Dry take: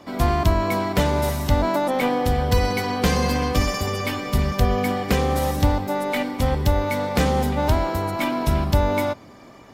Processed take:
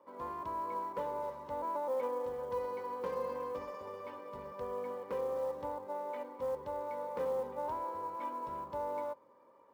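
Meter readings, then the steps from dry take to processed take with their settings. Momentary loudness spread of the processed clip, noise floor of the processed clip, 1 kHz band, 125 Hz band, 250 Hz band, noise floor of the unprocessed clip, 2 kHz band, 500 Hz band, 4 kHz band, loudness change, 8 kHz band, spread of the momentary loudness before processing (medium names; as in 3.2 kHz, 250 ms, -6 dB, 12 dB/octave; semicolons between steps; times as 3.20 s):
8 LU, -63 dBFS, -13.5 dB, -36.0 dB, -26.5 dB, -45 dBFS, -26.0 dB, -12.5 dB, under -30 dB, -17.0 dB, under -30 dB, 4 LU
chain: two resonant band-passes 710 Hz, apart 0.82 oct; short-mantissa float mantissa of 4-bit; trim -8 dB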